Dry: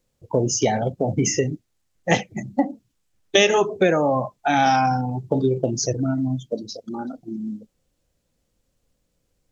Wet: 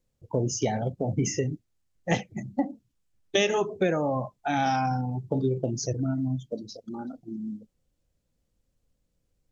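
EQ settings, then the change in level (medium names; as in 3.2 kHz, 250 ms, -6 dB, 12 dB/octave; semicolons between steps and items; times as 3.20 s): bass shelf 220 Hz +7 dB; -8.5 dB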